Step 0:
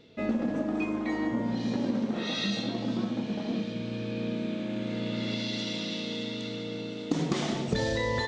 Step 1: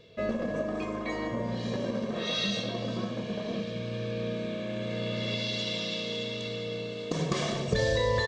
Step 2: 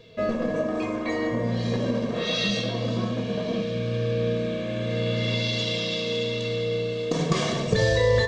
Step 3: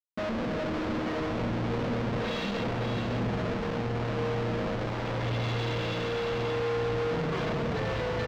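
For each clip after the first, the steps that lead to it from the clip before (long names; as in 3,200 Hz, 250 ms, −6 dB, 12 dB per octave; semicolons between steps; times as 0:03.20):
comb filter 1.8 ms, depth 69%
convolution reverb RT60 0.35 s, pre-delay 4 ms, DRR 6 dB; level +4 dB
comparator with hysteresis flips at −32 dBFS; high-frequency loss of the air 200 metres; single-tap delay 563 ms −6.5 dB; level −4.5 dB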